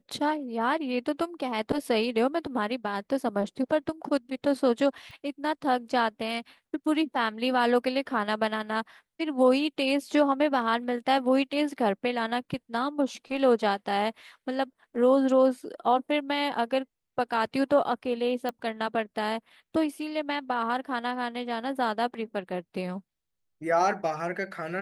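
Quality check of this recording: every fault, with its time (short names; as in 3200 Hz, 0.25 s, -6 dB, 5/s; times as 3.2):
5.11 pop
18.49 pop -19 dBFS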